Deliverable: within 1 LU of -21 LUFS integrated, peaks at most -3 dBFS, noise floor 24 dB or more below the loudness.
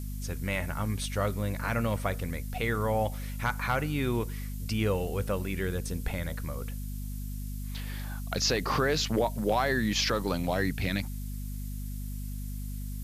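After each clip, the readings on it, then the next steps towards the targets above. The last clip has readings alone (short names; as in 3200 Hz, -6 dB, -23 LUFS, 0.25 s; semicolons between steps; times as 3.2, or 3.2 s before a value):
hum 50 Hz; harmonics up to 250 Hz; hum level -34 dBFS; noise floor -36 dBFS; noise floor target -56 dBFS; loudness -31.5 LUFS; peak -15.0 dBFS; loudness target -21.0 LUFS
-> de-hum 50 Hz, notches 5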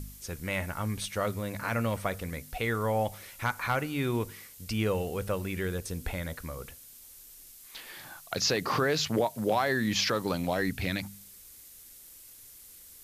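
hum none; noise floor -51 dBFS; noise floor target -55 dBFS
-> denoiser 6 dB, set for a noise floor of -51 dBFS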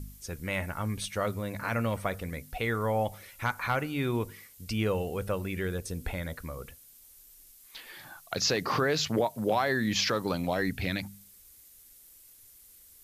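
noise floor -56 dBFS; loudness -31.0 LUFS; peak -16.0 dBFS; loudness target -21.0 LUFS
-> gain +10 dB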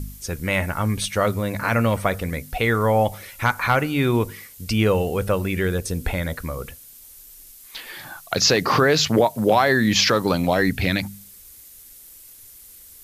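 loudness -21.0 LUFS; peak -6.0 dBFS; noise floor -46 dBFS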